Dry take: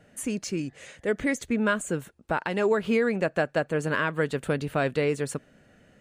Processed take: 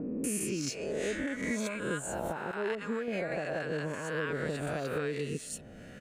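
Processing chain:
peak hold with a rise ahead of every peak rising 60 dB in 0.86 s
0:02.51–0:03.08: downward expander −16 dBFS
0:04.97–0:05.38: healed spectral selection 500–2,500 Hz both
downward compressor 8 to 1, threshold −38 dBFS, peak gain reduction 19.5 dB
multiband delay without the direct sound lows, highs 240 ms, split 1,000 Hz
level +7 dB

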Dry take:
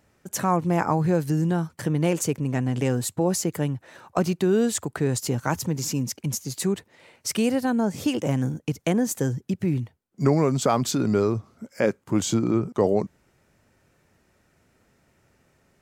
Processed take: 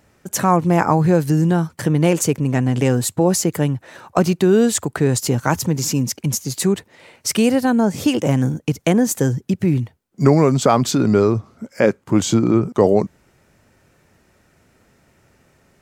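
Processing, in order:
0:10.54–0:12.62: high-shelf EQ 6,700 Hz −5 dB
level +7 dB

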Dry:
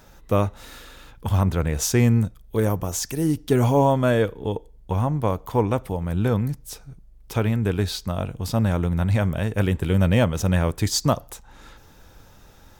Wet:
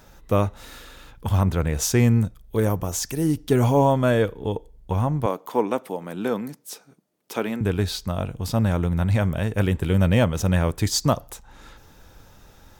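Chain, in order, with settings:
0:05.26–0:07.61: high-pass filter 220 Hz 24 dB per octave

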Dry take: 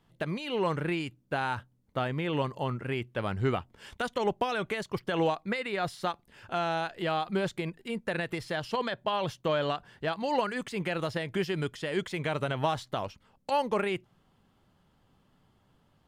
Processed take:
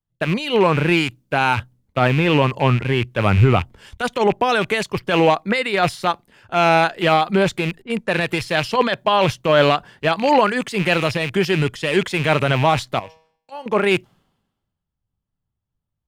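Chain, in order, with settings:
loose part that buzzes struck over −41 dBFS, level −29 dBFS
0:02.19–0:03.11: high-shelf EQ 4,600 Hz −3.5 dB
0:07.82–0:08.22: low-pass that shuts in the quiet parts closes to 690 Hz, open at −32 dBFS
0:12.99–0:13.66: tuned comb filter 160 Hz, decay 0.95 s, harmonics all, mix 80%
boost into a limiter +20 dB
multiband upward and downward expander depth 100%
level −5.5 dB

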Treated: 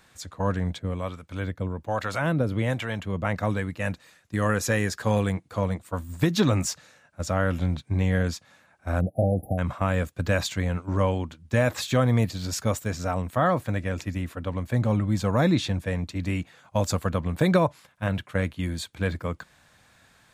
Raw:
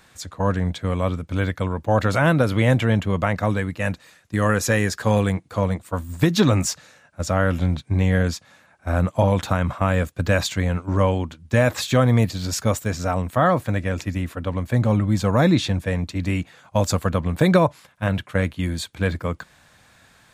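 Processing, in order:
0:00.79–0:03.25: two-band tremolo in antiphase 1.2 Hz, depth 70%, crossover 610 Hz
0:09.00–0:09.58: time-frequency box erased 800–9,700 Hz
level −4.5 dB

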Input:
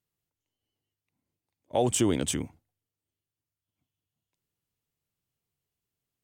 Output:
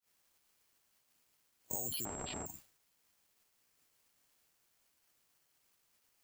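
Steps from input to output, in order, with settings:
spectral magnitudes quantised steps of 30 dB
background noise white −65 dBFS
bad sample-rate conversion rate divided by 6×, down filtered, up zero stuff
brickwall limiter −21 dBFS, peak gain reduction 22 dB
downward compressor 6 to 1, threshold −38 dBFS, peak gain reduction 9 dB
downward expander −53 dBFS
0:02.05–0:02.46: switching amplifier with a slow clock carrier 7,600 Hz
level +4.5 dB

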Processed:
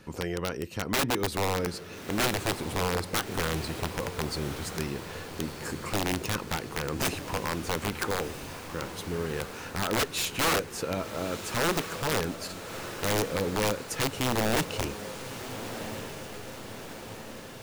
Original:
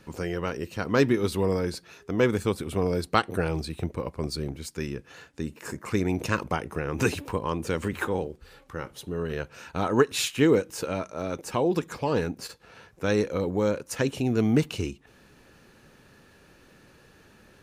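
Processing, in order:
in parallel at −1.5 dB: downward compressor 12 to 1, threshold −35 dBFS, peak gain reduction 21 dB
on the sum: wrap-around overflow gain 16.5 dB
feedback delay with all-pass diffusion 1,338 ms, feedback 61%, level −10 dB
level −4 dB

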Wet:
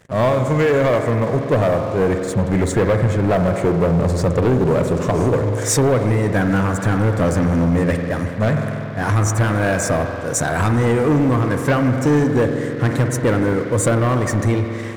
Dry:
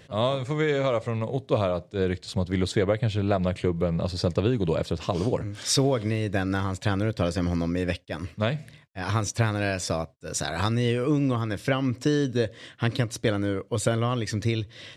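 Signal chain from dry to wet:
flat-topped bell 3,700 Hz −15.5 dB 1.2 octaves
spring reverb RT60 2.8 s, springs 47 ms, chirp 35 ms, DRR 6.5 dB
leveller curve on the samples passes 3

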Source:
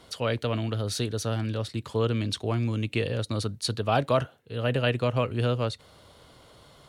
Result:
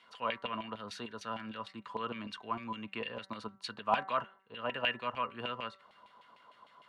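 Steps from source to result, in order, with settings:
auto-filter band-pass saw down 6.6 Hz 780–2,500 Hz
hum removal 192 Hz, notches 11
hollow resonant body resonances 210/1,000/2,800 Hz, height 13 dB, ringing for 65 ms

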